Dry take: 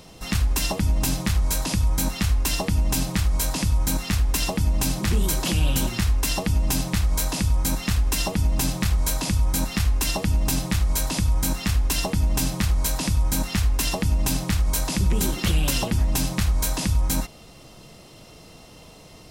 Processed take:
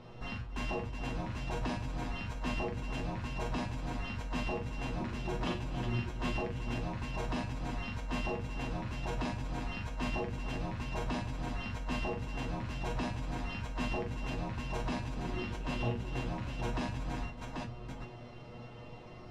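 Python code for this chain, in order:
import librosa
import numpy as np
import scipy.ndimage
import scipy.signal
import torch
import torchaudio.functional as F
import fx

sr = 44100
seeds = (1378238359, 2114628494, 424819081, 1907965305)

p1 = scipy.signal.sosfilt(scipy.signal.butter(2, 2100.0, 'lowpass', fs=sr, output='sos'), x)
p2 = fx.over_compress(p1, sr, threshold_db=-28.0, ratio=-1.0)
p3 = fx.comb_fb(p2, sr, f0_hz=120.0, decay_s=0.18, harmonics='all', damping=0.0, mix_pct=90)
p4 = p3 + fx.echo_multitap(p3, sr, ms=(41, 88, 277, 369, 788), db=(-3.5, -13.5, -14.0, -8.5, -3.5), dry=0)
y = F.gain(torch.from_numpy(p4), -2.5).numpy()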